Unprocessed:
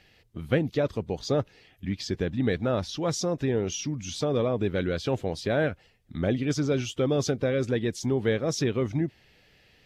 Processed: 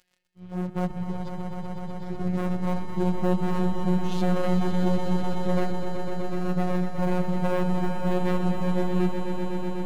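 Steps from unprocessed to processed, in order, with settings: tracing distortion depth 0.026 ms; low-pass that closes with the level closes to 410 Hz, closed at -26 dBFS; harmonic-percussive split percussive -18 dB; waveshaping leveller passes 5; slow attack 461 ms; robot voice 181 Hz; echo with a slow build-up 125 ms, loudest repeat 5, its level -8.5 dB; trim -1.5 dB

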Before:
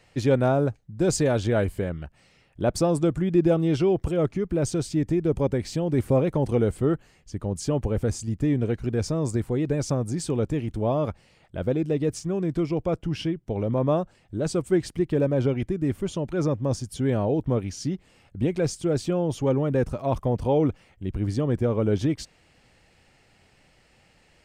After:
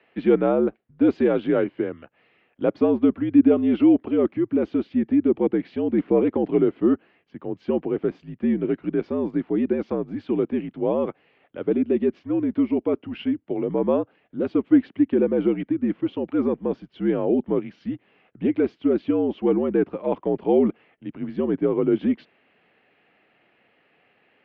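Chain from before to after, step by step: mistuned SSB -66 Hz 260–3200 Hz; dynamic bell 310 Hz, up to +7 dB, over -37 dBFS, Q 1.3

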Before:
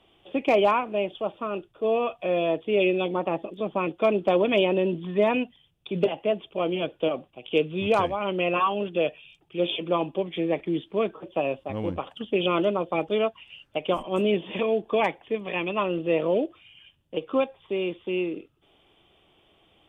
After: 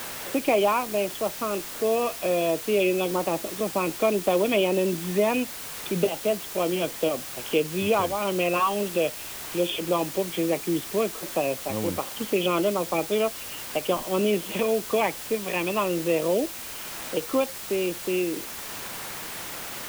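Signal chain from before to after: added noise white -38 dBFS; three bands compressed up and down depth 40%

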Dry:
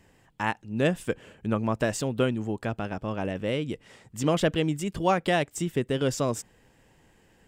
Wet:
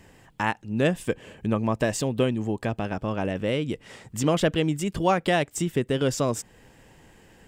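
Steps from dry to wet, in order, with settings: 0.92–2.86 s: band-stop 1.4 kHz, Q 7.6; in parallel at +2 dB: compression, threshold -37 dBFS, peak gain reduction 17.5 dB

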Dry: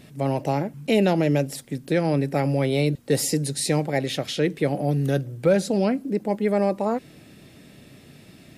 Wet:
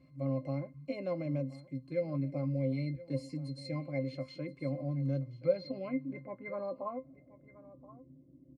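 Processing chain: 1.58–3.76 s: LFO notch saw up 3.5 Hz 460–2400 Hz; bass shelf 440 Hz -8.5 dB; low-pass sweep 9.4 kHz -> 350 Hz, 4.88–7.76 s; treble shelf 6.4 kHz -7.5 dB; pitch-class resonator C, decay 0.12 s; delay 1026 ms -18 dB

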